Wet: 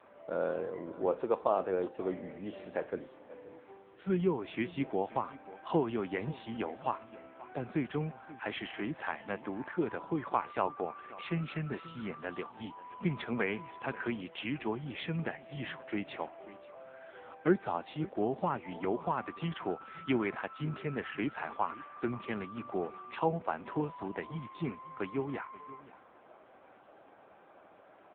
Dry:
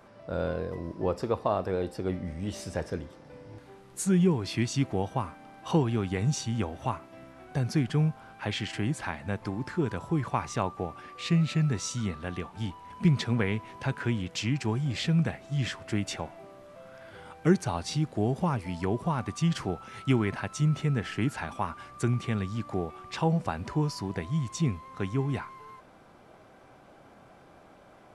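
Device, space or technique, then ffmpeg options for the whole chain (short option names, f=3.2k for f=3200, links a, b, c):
satellite phone: -af "highpass=310,lowpass=3.1k,aecho=1:1:532:0.126" -ar 8000 -c:a libopencore_amrnb -b:a 6700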